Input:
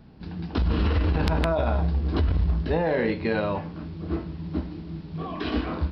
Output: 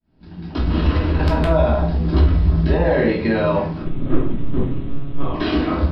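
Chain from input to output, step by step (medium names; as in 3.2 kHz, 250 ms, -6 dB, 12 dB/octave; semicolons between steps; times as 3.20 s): fade-in on the opening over 1.00 s; peak limiter -18 dBFS, peak gain reduction 7 dB; 3.82–5.34 s: monotone LPC vocoder at 8 kHz 140 Hz; simulated room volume 380 m³, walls furnished, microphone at 2.8 m; trim +4 dB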